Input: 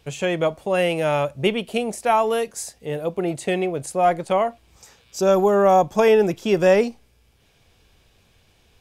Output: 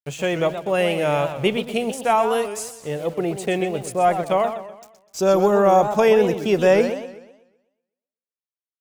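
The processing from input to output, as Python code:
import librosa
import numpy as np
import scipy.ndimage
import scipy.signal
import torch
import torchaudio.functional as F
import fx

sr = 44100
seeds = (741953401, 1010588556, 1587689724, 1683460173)

y = np.where(np.abs(x) >= 10.0 ** (-40.5 / 20.0), x, 0.0)
y = fx.echo_warbled(y, sr, ms=125, feedback_pct=42, rate_hz=2.8, cents=197, wet_db=-10)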